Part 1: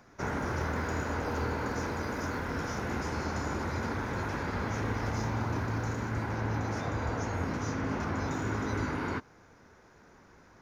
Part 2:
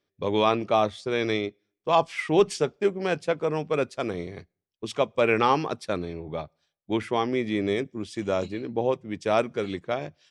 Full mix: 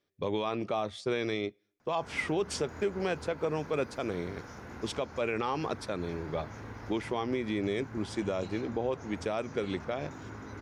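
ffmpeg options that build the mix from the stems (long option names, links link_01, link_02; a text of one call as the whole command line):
ffmpeg -i stem1.wav -i stem2.wav -filter_complex "[0:a]adelay=1800,volume=-11.5dB[link_01];[1:a]volume=-1.5dB[link_02];[link_01][link_02]amix=inputs=2:normalize=0,alimiter=limit=-21dB:level=0:latency=1:release=142" out.wav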